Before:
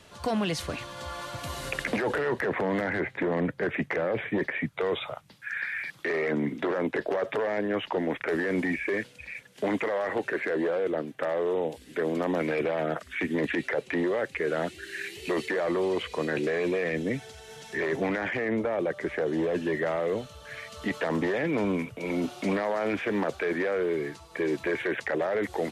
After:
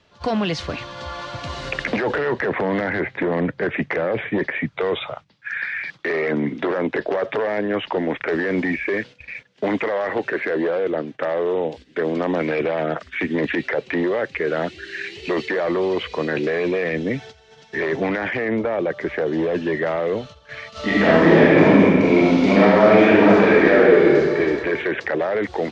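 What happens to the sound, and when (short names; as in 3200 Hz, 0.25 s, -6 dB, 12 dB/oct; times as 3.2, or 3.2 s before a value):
20.71–24.38 reverb throw, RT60 2 s, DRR -8.5 dB
whole clip: gate -43 dBFS, range -11 dB; LPF 5600 Hz 24 dB/oct; gain +6 dB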